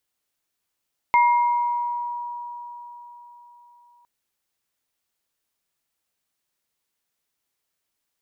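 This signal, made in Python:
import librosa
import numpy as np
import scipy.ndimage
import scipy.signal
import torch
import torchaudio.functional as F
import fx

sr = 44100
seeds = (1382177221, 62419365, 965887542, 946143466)

y = fx.additive_free(sr, length_s=2.91, hz=960.0, level_db=-13.0, upper_db=(-7.0,), decay_s=4.23, upper_decays_s=(1.1,), upper_hz=(2120.0,))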